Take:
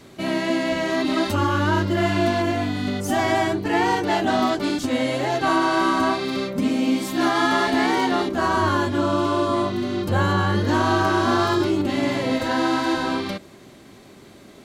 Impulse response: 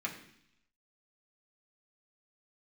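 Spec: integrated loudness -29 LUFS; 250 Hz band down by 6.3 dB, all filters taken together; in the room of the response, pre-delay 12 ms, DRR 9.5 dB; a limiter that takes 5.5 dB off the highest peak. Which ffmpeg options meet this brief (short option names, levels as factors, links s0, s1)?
-filter_complex "[0:a]equalizer=f=250:t=o:g=-8.5,alimiter=limit=0.178:level=0:latency=1,asplit=2[s0][s1];[1:a]atrim=start_sample=2205,adelay=12[s2];[s1][s2]afir=irnorm=-1:irlink=0,volume=0.237[s3];[s0][s3]amix=inputs=2:normalize=0,volume=0.596"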